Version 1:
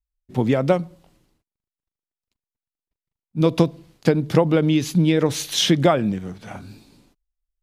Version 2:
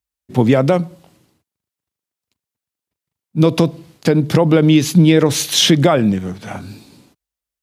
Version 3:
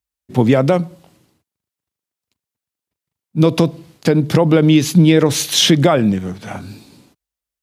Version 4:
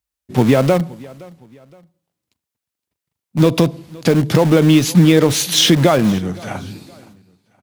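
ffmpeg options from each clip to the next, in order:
-af "highpass=f=74:w=0.5412,highpass=f=74:w=1.3066,equalizer=f=12k:w=0.49:g=2,alimiter=level_in=8.5dB:limit=-1dB:release=50:level=0:latency=1,volume=-1dB"
-af anull
-filter_complex "[0:a]asplit=2[a][b];[b]aeval=exprs='(mod(5.01*val(0)+1,2)-1)/5.01':c=same,volume=-12dB[c];[a][c]amix=inputs=2:normalize=0,aecho=1:1:517|1034:0.0708|0.0262"

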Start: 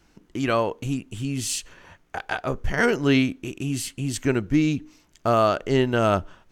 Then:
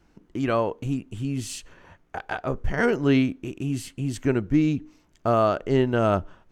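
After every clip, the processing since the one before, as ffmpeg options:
-af "highshelf=f=2k:g=-9"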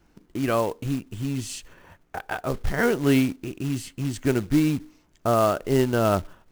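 -af "acrusher=bits=4:mode=log:mix=0:aa=0.000001"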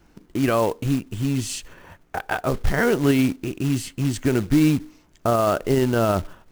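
-af "alimiter=limit=-14dB:level=0:latency=1:release=30,volume=5dB"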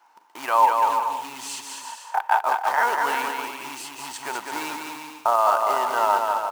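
-af "highpass=f=910:t=q:w=9.2,aecho=1:1:200|340|438|506.6|554.6:0.631|0.398|0.251|0.158|0.1,volume=-3.5dB"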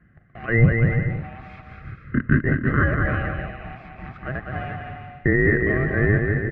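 -af "afftfilt=real='real(if(between(b,1,1008),(2*floor((b-1)/48)+1)*48-b,b),0)':imag='imag(if(between(b,1,1008),(2*floor((b-1)/48)+1)*48-b,b),0)*if(between(b,1,1008),-1,1)':win_size=2048:overlap=0.75,lowpass=f=1.8k:w=0.5412,lowpass=f=1.8k:w=1.3066,volume=2.5dB"

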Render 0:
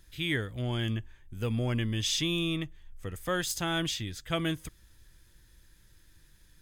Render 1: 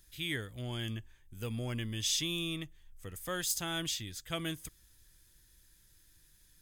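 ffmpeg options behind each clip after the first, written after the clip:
-af "highshelf=f=4.5k:g=11.5,volume=-7.5dB"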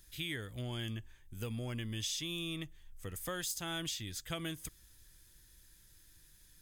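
-af "acompressor=threshold=-38dB:ratio=5,volume=2dB"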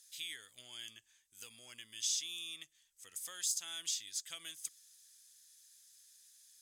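-af "bandpass=f=6.8k:t=q:w=1.3:csg=0,volume=6dB"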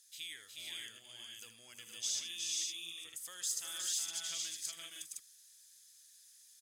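-af "aecho=1:1:78|363|406|466|513:0.251|0.596|0.188|0.596|0.668,volume=-2dB"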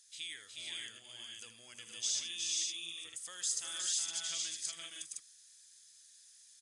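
-af "volume=2dB" -ar 22050 -c:a aac -b:a 96k

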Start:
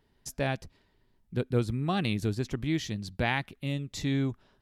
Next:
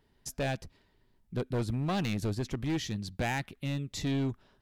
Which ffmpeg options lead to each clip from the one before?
-af "asoftclip=type=hard:threshold=-26.5dB"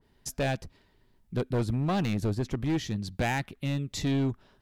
-af "adynamicequalizer=threshold=0.00355:dfrequency=1700:dqfactor=0.7:tfrequency=1700:tqfactor=0.7:attack=5:release=100:ratio=0.375:range=3:mode=cutabove:tftype=highshelf,volume=3.5dB"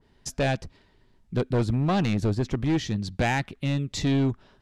-af "lowpass=8.1k,volume=4dB"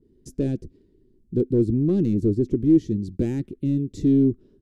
-af "firequalizer=gain_entry='entry(140,0);entry(350,11);entry(710,-23);entry(9000,-8)':delay=0.05:min_phase=1"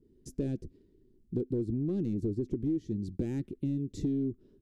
-af "acompressor=threshold=-24dB:ratio=6,volume=-4.5dB"

